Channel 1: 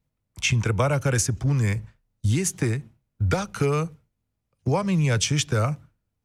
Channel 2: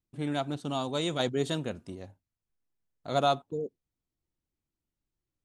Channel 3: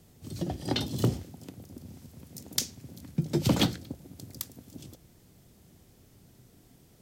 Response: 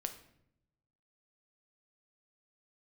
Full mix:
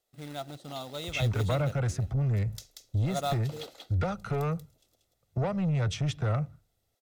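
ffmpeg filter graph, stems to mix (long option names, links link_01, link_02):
-filter_complex "[0:a]lowpass=frequency=1100:poles=1,asoftclip=type=tanh:threshold=-22dB,adelay=700,volume=-2.5dB[link_01];[1:a]acrusher=bits=3:mode=log:mix=0:aa=0.000001,volume=-8.5dB[link_02];[2:a]highpass=frequency=390:width=0.5412,highpass=frequency=390:width=1.3066,volume=-18dB,asplit=2[link_03][link_04];[link_04]volume=-4.5dB,aecho=0:1:185:1[link_05];[link_01][link_02][link_03][link_05]amix=inputs=4:normalize=0,equalizer=frequency=3800:width=5.3:gain=5.5,aecho=1:1:1.5:0.38"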